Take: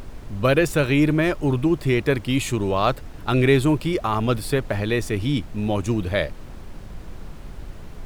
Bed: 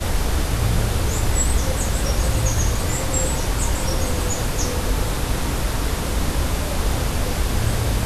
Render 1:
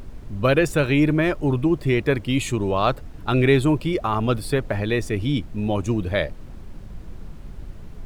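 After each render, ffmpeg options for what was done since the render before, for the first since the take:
-af "afftdn=nr=6:nf=-38"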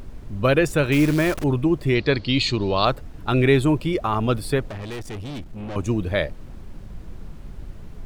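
-filter_complex "[0:a]asettb=1/sr,asplit=3[s0][s1][s2];[s0]atrim=end=0.924[s3];[s1]atrim=start=0.92:end=1.44,asetpts=PTS-STARTPTS,afade=t=in:d=0.004:c=qsin,afade=t=out:st=0.516:d=0.004:c=qsin,acrusher=bits=6:dc=4:mix=0:aa=0.000001[s4];[s2]atrim=start=1.436[s5];[s3][s4]acrossfade=d=0.004:c1=hsin:c2=qsin[s6];[s6][s5]acrossfade=d=0.004:c1=qsin:c2=hsin,asettb=1/sr,asplit=3[s7][s8][s9];[s7]atrim=end=1.954[s10];[s8]atrim=start=1.95:end=2.85,asetpts=PTS-STARTPTS,afade=t=in:d=0.004:c=qsin,afade=t=out:st=0.896:d=0.004:c=qsin,lowpass=f=4400:t=q:w=9.4[s11];[s9]atrim=start=2.846[s12];[s10][s11]acrossfade=d=0.004:c1=hsin:c2=qsin[s13];[s13][s12]acrossfade=d=0.004:c1=qsin:c2=hsin,asettb=1/sr,asplit=3[s14][s15][s16];[s14]atrim=end=4.684[s17];[s15]atrim=start=4.68:end=5.76,asetpts=PTS-STARTPTS,afade=t=in:d=0.004:c=qsin,afade=t=out:st=1.076:d=0.004:c=qsin,aeval=exprs='(tanh(31.6*val(0)+0.35)-tanh(0.35))/31.6':c=same[s18];[s16]atrim=start=5.756[s19];[s17][s18]acrossfade=d=0.004:c1=hsin:c2=qsin[s20];[s20][s19]acrossfade=d=0.004:c1=qsin:c2=hsin"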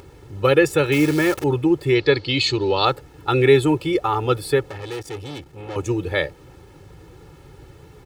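-af "highpass=120,aecho=1:1:2.3:0.88"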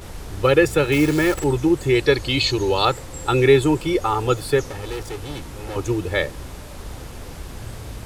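-filter_complex "[1:a]volume=0.2[s0];[0:a][s0]amix=inputs=2:normalize=0"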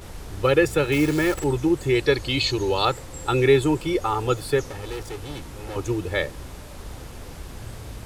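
-af "volume=0.708"

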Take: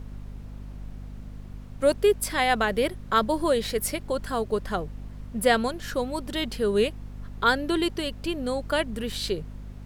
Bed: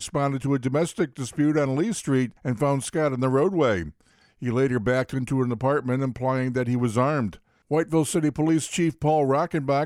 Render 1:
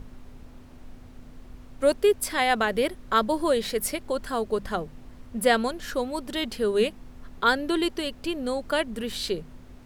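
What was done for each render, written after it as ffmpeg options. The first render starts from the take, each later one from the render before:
-af "bandreject=f=50:t=h:w=6,bandreject=f=100:t=h:w=6,bandreject=f=150:t=h:w=6,bandreject=f=200:t=h:w=6"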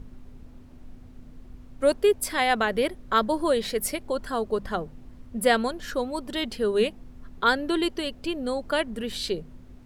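-af "afftdn=nr=6:nf=-48"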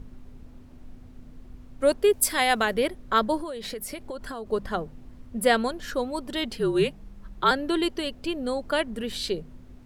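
-filter_complex "[0:a]asettb=1/sr,asplit=3[s0][s1][s2];[s0]atrim=end=2.134[s3];[s1]atrim=start=2.13:end=2.74,asetpts=PTS-STARTPTS,afade=t=in:d=0.004:c=qsin,afade=t=out:st=0.606:d=0.004:c=qsin,aemphasis=mode=production:type=cd[s4];[s2]atrim=start=2.736[s5];[s3][s4]acrossfade=d=0.004:c1=hsin:c2=qsin[s6];[s6][s5]acrossfade=d=0.004:c1=qsin:c2=hsin,asettb=1/sr,asplit=3[s7][s8][s9];[s7]atrim=end=3.404[s10];[s8]atrim=start=3.4:end=4.49,asetpts=PTS-STARTPTS,afade=t=in:d=0.004:c=qsin,afade=t=out:st=1.086:d=0.004:c=qsin,acompressor=threshold=0.0316:ratio=16:attack=3.2:release=140:knee=1:detection=peak[s11];[s9]atrim=start=4.486[s12];[s10][s11]acrossfade=d=0.004:c1=hsin:c2=qsin[s13];[s13][s12]acrossfade=d=0.004:c1=qsin:c2=hsin,asettb=1/sr,asplit=3[s14][s15][s16];[s14]atrim=end=6.594[s17];[s15]atrim=start=6.59:end=7.51,asetpts=PTS-STARTPTS,afade=t=in:d=0.004:c=qsin,afade=t=out:st=0.916:d=0.004:c=qsin,afreqshift=-48[s18];[s16]atrim=start=7.506[s19];[s17][s18]acrossfade=d=0.004:c1=hsin:c2=qsin[s20];[s20][s19]acrossfade=d=0.004:c1=qsin:c2=hsin"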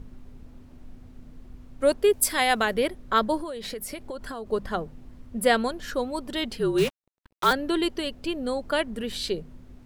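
-filter_complex "[0:a]asettb=1/sr,asplit=3[s0][s1][s2];[s0]atrim=end=6.784[s3];[s1]atrim=start=6.78:end=7.53,asetpts=PTS-STARTPTS,afade=t=in:d=0.004:c=qsin,afade=t=out:st=0.746:d=0.004:c=qsin,acrusher=bits=4:mix=0:aa=0.5[s4];[s2]atrim=start=7.526[s5];[s3][s4]acrossfade=d=0.004:c1=hsin:c2=qsin[s6];[s6][s5]acrossfade=d=0.004:c1=qsin:c2=hsin"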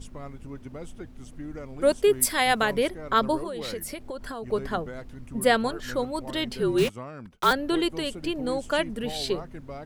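-filter_complex "[1:a]volume=0.141[s0];[0:a][s0]amix=inputs=2:normalize=0"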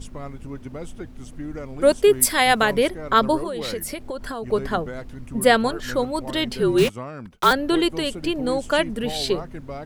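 -af "volume=1.78,alimiter=limit=0.708:level=0:latency=1"

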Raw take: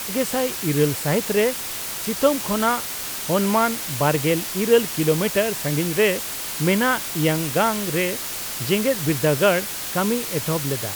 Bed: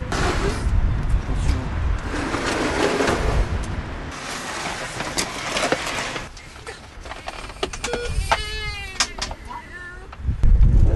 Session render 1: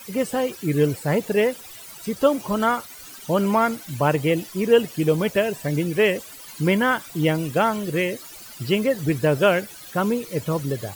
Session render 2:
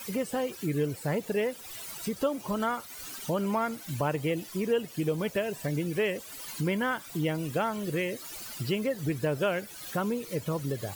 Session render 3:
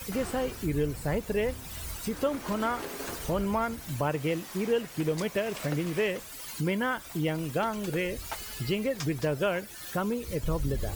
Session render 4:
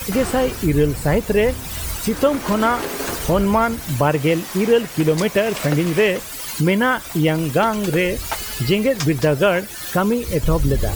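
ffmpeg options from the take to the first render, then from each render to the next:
-af "afftdn=nr=16:nf=-30"
-af "acompressor=threshold=0.0224:ratio=2"
-filter_complex "[1:a]volume=0.112[s0];[0:a][s0]amix=inputs=2:normalize=0"
-af "volume=3.98"

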